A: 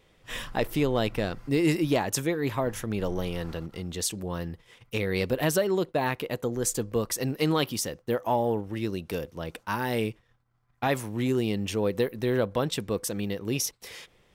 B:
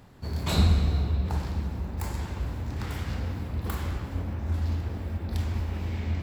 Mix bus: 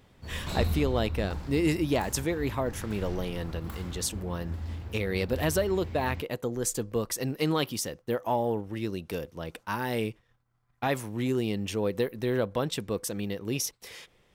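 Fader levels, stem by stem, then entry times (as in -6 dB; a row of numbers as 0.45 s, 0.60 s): -2.0 dB, -8.0 dB; 0.00 s, 0.00 s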